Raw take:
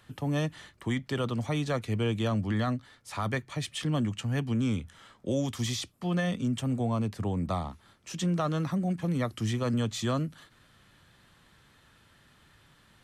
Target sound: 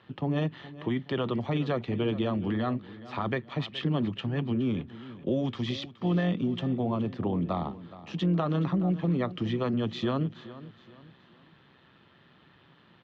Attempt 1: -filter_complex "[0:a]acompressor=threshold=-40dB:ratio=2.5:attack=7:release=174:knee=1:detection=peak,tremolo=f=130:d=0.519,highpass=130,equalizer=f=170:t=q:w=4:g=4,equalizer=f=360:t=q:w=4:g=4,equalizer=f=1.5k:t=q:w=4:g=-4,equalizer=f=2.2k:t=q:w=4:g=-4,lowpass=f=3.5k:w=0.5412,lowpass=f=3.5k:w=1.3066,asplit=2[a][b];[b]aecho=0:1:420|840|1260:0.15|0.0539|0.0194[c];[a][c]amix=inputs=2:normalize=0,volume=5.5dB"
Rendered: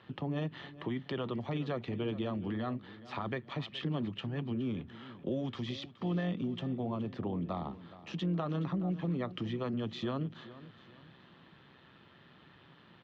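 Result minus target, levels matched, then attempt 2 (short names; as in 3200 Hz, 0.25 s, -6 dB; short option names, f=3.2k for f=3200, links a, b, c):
compressor: peak gain reduction +7 dB
-filter_complex "[0:a]acompressor=threshold=-28.5dB:ratio=2.5:attack=7:release=174:knee=1:detection=peak,tremolo=f=130:d=0.519,highpass=130,equalizer=f=170:t=q:w=4:g=4,equalizer=f=360:t=q:w=4:g=4,equalizer=f=1.5k:t=q:w=4:g=-4,equalizer=f=2.2k:t=q:w=4:g=-4,lowpass=f=3.5k:w=0.5412,lowpass=f=3.5k:w=1.3066,asplit=2[a][b];[b]aecho=0:1:420|840|1260:0.15|0.0539|0.0194[c];[a][c]amix=inputs=2:normalize=0,volume=5.5dB"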